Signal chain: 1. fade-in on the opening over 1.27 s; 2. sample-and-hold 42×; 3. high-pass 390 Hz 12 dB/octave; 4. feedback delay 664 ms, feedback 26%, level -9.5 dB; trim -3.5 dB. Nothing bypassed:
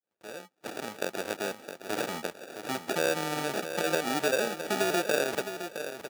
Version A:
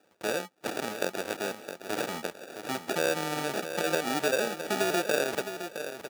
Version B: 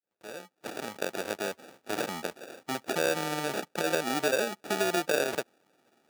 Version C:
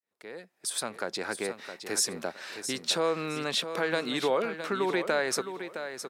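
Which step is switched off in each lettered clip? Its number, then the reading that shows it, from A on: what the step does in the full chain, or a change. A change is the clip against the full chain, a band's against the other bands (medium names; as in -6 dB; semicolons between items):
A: 1, momentary loudness spread change -5 LU; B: 4, momentary loudness spread change +2 LU; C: 2, crest factor change -3.5 dB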